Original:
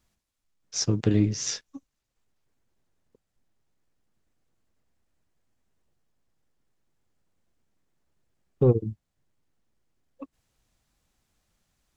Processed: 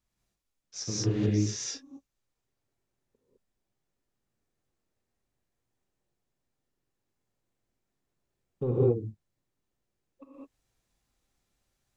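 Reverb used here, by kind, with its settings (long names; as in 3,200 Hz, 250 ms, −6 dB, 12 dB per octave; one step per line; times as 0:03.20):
reverb whose tail is shaped and stops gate 230 ms rising, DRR −6 dB
level −11 dB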